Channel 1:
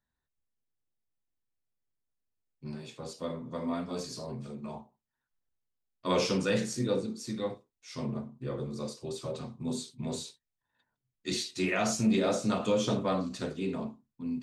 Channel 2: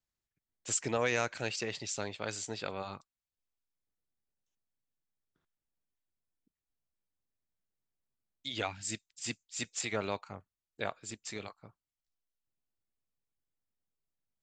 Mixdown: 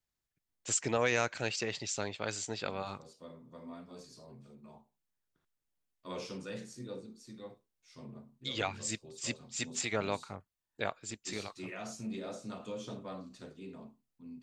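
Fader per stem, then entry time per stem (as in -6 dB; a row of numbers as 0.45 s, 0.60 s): -14.0 dB, +1.0 dB; 0.00 s, 0.00 s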